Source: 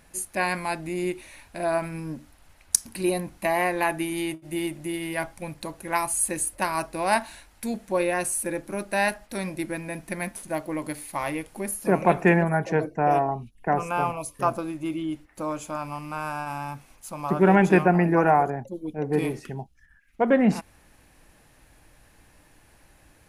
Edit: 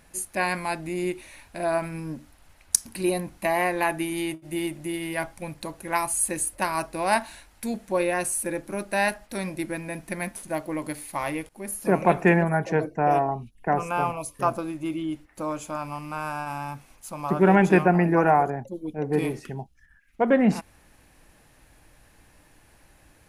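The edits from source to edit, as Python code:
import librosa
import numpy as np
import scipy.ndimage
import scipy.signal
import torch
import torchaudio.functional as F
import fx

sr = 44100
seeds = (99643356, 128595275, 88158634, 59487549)

y = fx.edit(x, sr, fx.fade_in_from(start_s=11.49, length_s=0.29, floor_db=-17.5), tone=tone)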